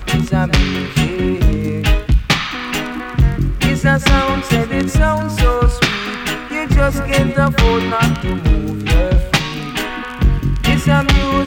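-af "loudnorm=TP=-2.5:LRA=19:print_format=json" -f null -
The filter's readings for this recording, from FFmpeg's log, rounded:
"input_i" : "-16.0",
"input_tp" : "-2.0",
"input_lra" : "0.9",
"input_thresh" : "-26.0",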